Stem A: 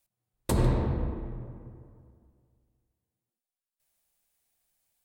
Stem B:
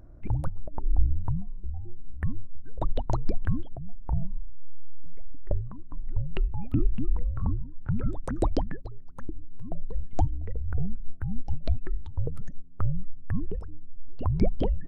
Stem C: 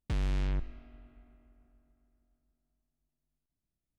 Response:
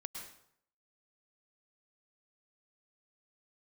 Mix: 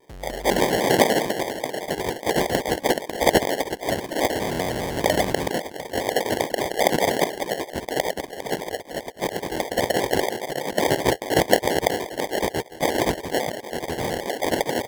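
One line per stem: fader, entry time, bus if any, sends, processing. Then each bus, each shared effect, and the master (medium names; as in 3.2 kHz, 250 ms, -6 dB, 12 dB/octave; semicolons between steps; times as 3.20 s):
+3.0 dB, 0.00 s, send -4.5 dB, elliptic band-pass 170–760 Hz; compression, threshold -32 dBFS, peak gain reduction 7 dB
+2.5 dB, 0.00 s, no send, spectral contrast reduction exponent 0.31; steep low-pass 900 Hz 48 dB/octave; spectral gate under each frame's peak -15 dB weak
-12.0 dB, 0.00 s, send -8 dB, none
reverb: on, RT60 0.70 s, pre-delay 98 ms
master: peaking EQ 530 Hz +12 dB 1.4 oct; sample-rate reducer 1.3 kHz, jitter 0%; vibrato with a chosen wave square 5 Hz, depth 100 cents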